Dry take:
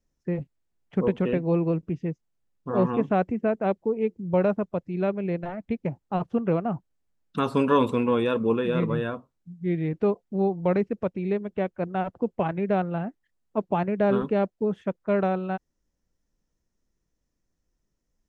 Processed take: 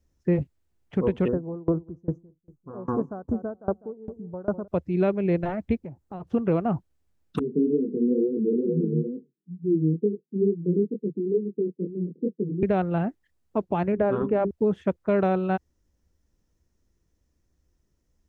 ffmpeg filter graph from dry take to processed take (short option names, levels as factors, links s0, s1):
-filter_complex "[0:a]asettb=1/sr,asplit=3[s0][s1][s2];[s0]atrim=end=1.284[s3];[s1]atrim=start=1.28:end=4.68,asetpts=PTS-STARTPTS,afade=t=in:d=0.004:c=qsin,afade=t=out:st=3.396:d=0.004:c=qsin,asuperstop=centerf=3000:order=12:qfactor=0.72,asplit=2[s4][s5];[s5]adelay=200,lowpass=f=820:p=1,volume=0.141,asplit=2[s6][s7];[s7]adelay=200,lowpass=f=820:p=1,volume=0.41,asplit=2[s8][s9];[s9]adelay=200,lowpass=f=820:p=1,volume=0.41[s10];[s4][s6][s8][s10]amix=inputs=4:normalize=0,atrim=end_sample=149940,aeval=exprs='val(0)*pow(10,-27*if(lt(mod(2.5*n/s,1),2*abs(2.5)/1000),1-mod(2.5*n/s,1)/(2*abs(2.5)/1000),(mod(2.5*n/s,1)-2*abs(2.5)/1000)/(1-2*abs(2.5)/1000))/20)':c=same[s11];[s2]atrim=start=4.676[s12];[s3][s11]acrossfade=d=0.004:c1=hsin:c2=qsin[s13];[s13][s12]acrossfade=d=0.004:c1=qsin:c2=hsin,asettb=1/sr,asplit=3[s14][s15][s16];[s14]atrim=end=5.784[s17];[s15]atrim=start=5.78:end=6.27,asetpts=PTS-STARTPTS,afade=t=in:d=0.004:c=qsin,afade=t=out:st=0.486:d=0.004:c=qsin,equalizer=f=3000:t=o:w=1.6:g=-5,acompressor=threshold=0.00501:ratio=2.5:attack=3.2:release=140:knee=1:detection=peak[s18];[s16]atrim=start=6.266[s19];[s17][s18]acrossfade=d=0.004:c1=hsin:c2=qsin[s20];[s20][s19]acrossfade=d=0.004:c1=qsin:c2=hsin,asettb=1/sr,asplit=3[s21][s22][s23];[s21]atrim=end=7.394[s24];[s22]atrim=start=7.39:end=12.63,asetpts=PTS-STARTPTS,afade=t=in:d=0.004:c=qsin,afade=t=out:st=5.236:d=0.004:c=qsin,asuperpass=centerf=260:order=20:qfactor=0.81,flanger=delay=18.5:depth=6.7:speed=2.2[s25];[s23]atrim=start=12.626[s26];[s24][s25]acrossfade=d=0.004:c1=hsin:c2=qsin[s27];[s27][s26]acrossfade=d=0.004:c1=qsin:c2=hsin,asettb=1/sr,asplit=3[s28][s29][s30];[s28]atrim=end=13.924[s31];[s29]atrim=start=13.92:end=14.51,asetpts=PTS-STARTPTS,afade=t=in:d=0.004:c=qsin,afade=t=out:st=0.586:d=0.004:c=qsin,lowpass=1800,bandreject=f=50:t=h:w=6,bandreject=f=100:t=h:w=6,bandreject=f=150:t=h:w=6,bandreject=f=200:t=h:w=6,bandreject=f=250:t=h:w=6,bandreject=f=300:t=h:w=6,bandreject=f=350:t=h:w=6,bandreject=f=400:t=h:w=6[s32];[s30]atrim=start=14.506[s33];[s31][s32]acrossfade=d=0.004:c1=hsin:c2=qsin[s34];[s34][s33]acrossfade=d=0.004:c1=qsin:c2=hsin,equalizer=f=350:t=o:w=0.64:g=3.5,alimiter=limit=0.126:level=0:latency=1:release=334,equalizer=f=75:t=o:w=0.83:g=12.5,volume=1.5"